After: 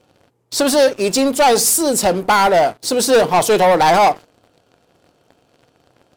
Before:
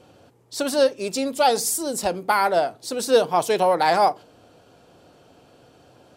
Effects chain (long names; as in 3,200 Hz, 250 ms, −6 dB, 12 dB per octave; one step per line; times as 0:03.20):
leveller curve on the samples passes 3